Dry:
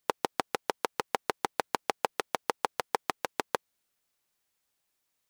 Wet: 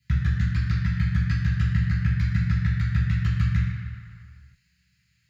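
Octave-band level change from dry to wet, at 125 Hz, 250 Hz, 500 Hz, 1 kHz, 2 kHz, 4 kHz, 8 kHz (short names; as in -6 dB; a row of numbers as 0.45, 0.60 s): +35.0 dB, +13.5 dB, under -20 dB, -14.0 dB, +3.0 dB, -4.0 dB, under -10 dB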